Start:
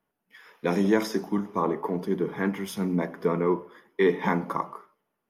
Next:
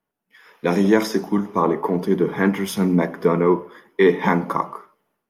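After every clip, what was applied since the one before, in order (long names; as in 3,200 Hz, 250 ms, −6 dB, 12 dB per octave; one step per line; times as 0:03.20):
automatic gain control gain up to 11.5 dB
level −2 dB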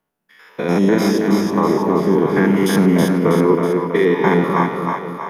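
spectrum averaged block by block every 100 ms
brickwall limiter −12.5 dBFS, peak gain reduction 7 dB
echo with a time of its own for lows and highs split 520 Hz, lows 245 ms, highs 323 ms, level −3.5 dB
level +6 dB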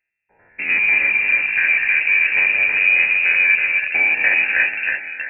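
phaser with its sweep stopped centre 310 Hz, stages 8
in parallel at −11 dB: comparator with hysteresis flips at −19.5 dBFS
on the sum: voice inversion scrambler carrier 2,700 Hz
level +1.5 dB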